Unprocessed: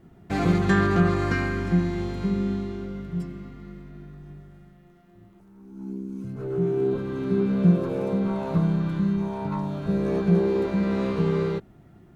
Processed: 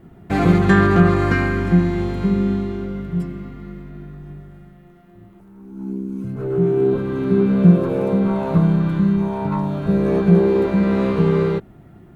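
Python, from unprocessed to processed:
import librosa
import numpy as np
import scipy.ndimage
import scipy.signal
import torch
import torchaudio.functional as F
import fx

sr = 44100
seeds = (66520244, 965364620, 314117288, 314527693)

y = fx.peak_eq(x, sr, hz=5600.0, db=-6.5, octaves=1.2)
y = y * 10.0 ** (7.0 / 20.0)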